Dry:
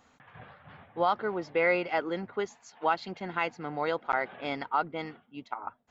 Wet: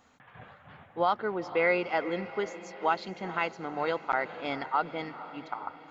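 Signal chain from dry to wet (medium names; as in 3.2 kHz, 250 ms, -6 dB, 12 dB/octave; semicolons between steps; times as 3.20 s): hum notches 50/100/150 Hz; on a send: echo that smears into a reverb 464 ms, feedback 57%, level -14.5 dB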